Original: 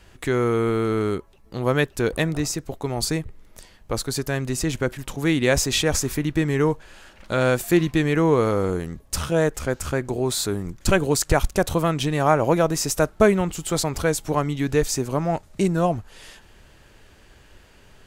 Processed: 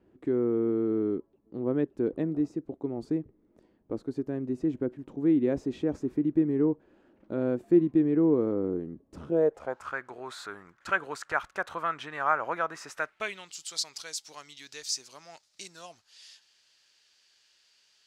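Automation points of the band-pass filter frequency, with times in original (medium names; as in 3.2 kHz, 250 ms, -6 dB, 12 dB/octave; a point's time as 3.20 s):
band-pass filter, Q 2.5
9.25 s 300 Hz
9.95 s 1.4 kHz
12.90 s 1.4 kHz
13.53 s 4.9 kHz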